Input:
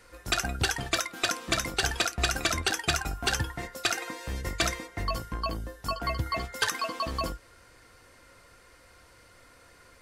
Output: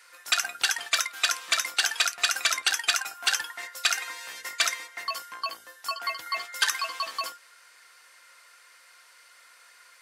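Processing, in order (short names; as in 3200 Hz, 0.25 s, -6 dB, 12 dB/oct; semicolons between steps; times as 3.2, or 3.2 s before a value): HPF 1300 Hz 12 dB/oct; gain +4.5 dB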